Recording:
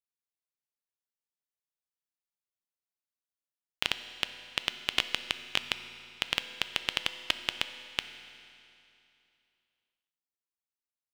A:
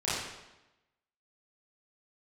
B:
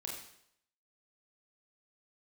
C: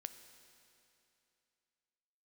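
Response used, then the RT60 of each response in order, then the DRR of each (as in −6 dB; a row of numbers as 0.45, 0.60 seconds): C; 1.0, 0.70, 2.8 seconds; −11.0, −2.0, 9.5 decibels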